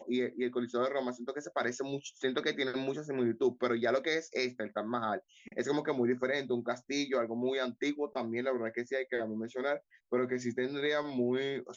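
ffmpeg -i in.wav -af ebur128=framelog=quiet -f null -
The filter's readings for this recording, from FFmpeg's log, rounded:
Integrated loudness:
  I:         -34.0 LUFS
  Threshold: -44.0 LUFS
Loudness range:
  LRA:         1.8 LU
  Threshold: -54.0 LUFS
  LRA low:   -34.9 LUFS
  LRA high:  -33.1 LUFS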